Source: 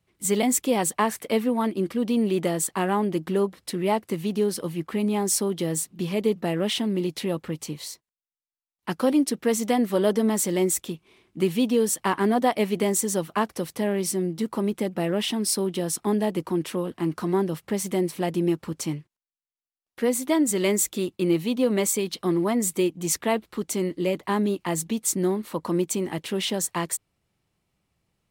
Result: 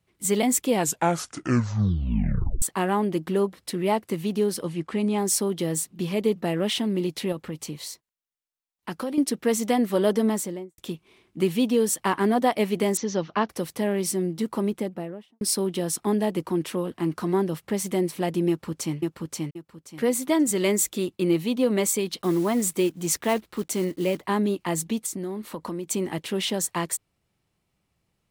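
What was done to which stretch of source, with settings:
0:00.67: tape stop 1.95 s
0:04.63–0:05.18: low-pass filter 9,800 Hz 24 dB per octave
0:07.32–0:09.18: downward compressor 3 to 1, threshold −28 dBFS
0:10.23–0:10.78: fade out and dull
0:12.97–0:13.49: Butterworth low-pass 6,200 Hz 72 dB per octave
0:14.59–0:15.41: fade out and dull
0:18.49–0:18.97: delay throw 530 ms, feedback 25%, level −2 dB
0:22.22–0:24.23: one scale factor per block 5 bits
0:25.06–0:25.87: downward compressor, threshold −28 dBFS

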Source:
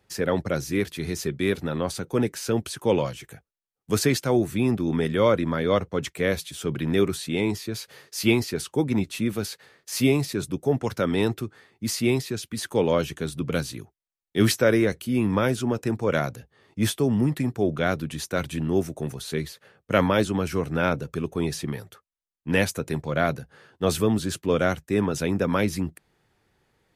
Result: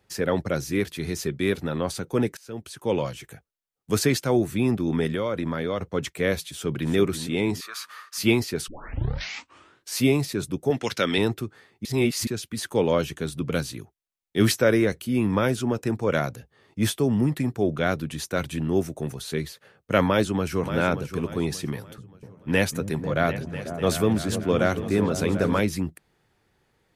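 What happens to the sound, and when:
0:02.37–0:03.16: fade in, from −23.5 dB
0:05.14–0:05.90: downward compressor, threshold −22 dBFS
0:06.49–0:06.94: delay throw 330 ms, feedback 40%, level −10 dB
0:07.61–0:08.18: high-pass with resonance 1,200 Hz, resonance Q 11
0:08.68: tape start 1.32 s
0:10.70–0:11.18: meter weighting curve D
0:11.85–0:12.27: reverse
0:20.05–0:20.76: delay throw 580 ms, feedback 35%, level −10 dB
0:21.73–0:25.60: echo whose low-pass opens from repeat to repeat 248 ms, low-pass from 200 Hz, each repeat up 2 octaves, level −6 dB

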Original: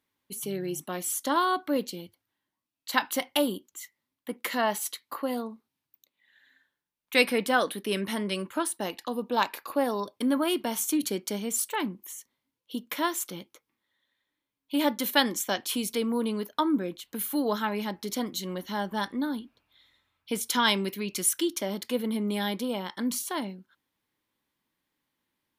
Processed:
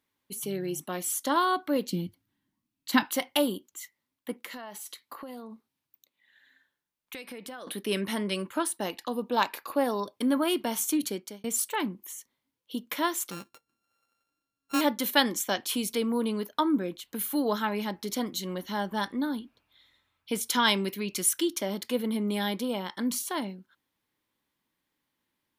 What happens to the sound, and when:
0:01.91–0:03.03: low shelf with overshoot 350 Hz +10.5 dB, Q 1.5
0:04.33–0:07.67: downward compressor 16 to 1, threshold −37 dBFS
0:10.83–0:11.44: fade out equal-power
0:13.31–0:14.81: samples sorted by size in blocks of 32 samples

